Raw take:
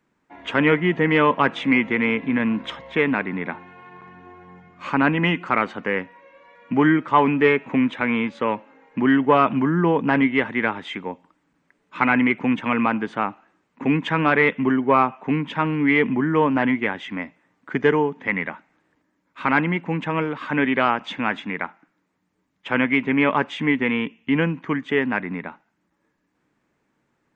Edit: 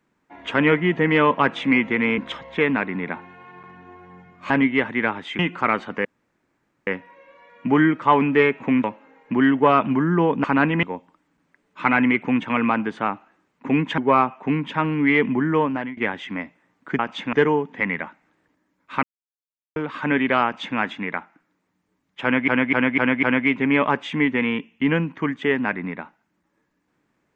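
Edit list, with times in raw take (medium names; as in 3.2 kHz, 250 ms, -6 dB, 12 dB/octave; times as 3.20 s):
2.18–2.56 s: delete
4.88–5.27 s: swap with 10.10–10.99 s
5.93 s: insert room tone 0.82 s
7.90–8.50 s: delete
14.14–14.79 s: delete
16.33–16.78 s: fade out, to -19 dB
19.50–20.23 s: mute
20.91–21.25 s: copy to 17.80 s
22.70–22.95 s: loop, 5 plays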